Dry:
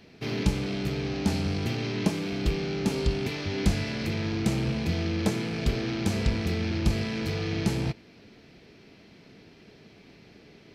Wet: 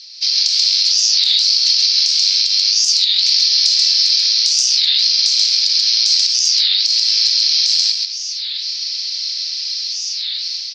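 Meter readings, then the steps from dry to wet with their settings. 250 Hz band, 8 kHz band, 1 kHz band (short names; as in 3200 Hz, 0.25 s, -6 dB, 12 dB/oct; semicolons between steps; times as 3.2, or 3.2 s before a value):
under -35 dB, +26.0 dB, under -10 dB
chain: AGC gain up to 13 dB; Butterworth band-pass 4900 Hz, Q 3.3; compressor, threshold -43 dBFS, peak gain reduction 14 dB; echo 0.134 s -3.5 dB; maximiser +32 dB; record warp 33 1/3 rpm, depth 250 cents; gain -1 dB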